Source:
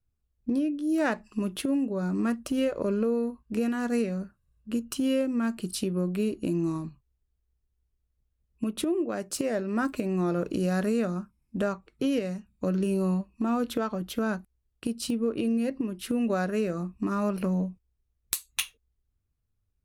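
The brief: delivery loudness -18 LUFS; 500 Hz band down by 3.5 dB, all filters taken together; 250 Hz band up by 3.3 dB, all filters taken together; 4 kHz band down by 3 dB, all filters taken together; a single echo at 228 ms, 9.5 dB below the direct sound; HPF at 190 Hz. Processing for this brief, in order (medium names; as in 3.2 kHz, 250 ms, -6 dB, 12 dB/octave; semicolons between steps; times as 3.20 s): high-pass 190 Hz; peaking EQ 250 Hz +7.5 dB; peaking EQ 500 Hz -7 dB; peaking EQ 4 kHz -4 dB; delay 228 ms -9.5 dB; trim +9 dB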